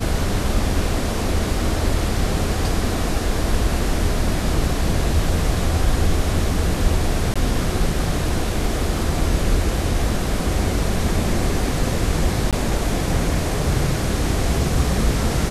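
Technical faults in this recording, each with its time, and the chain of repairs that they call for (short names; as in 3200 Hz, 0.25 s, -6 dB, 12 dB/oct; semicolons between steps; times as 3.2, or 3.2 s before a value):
7.34–7.36 gap 16 ms
12.51–12.53 gap 17 ms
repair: interpolate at 7.34, 16 ms; interpolate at 12.51, 17 ms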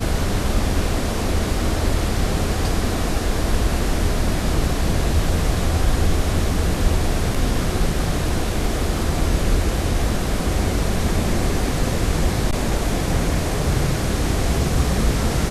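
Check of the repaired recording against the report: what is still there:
none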